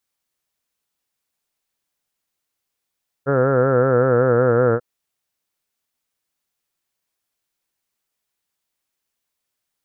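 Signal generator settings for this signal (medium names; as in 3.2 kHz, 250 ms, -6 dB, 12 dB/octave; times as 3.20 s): formant-synthesis vowel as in heard, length 1.54 s, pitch 134 Hz, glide -2 st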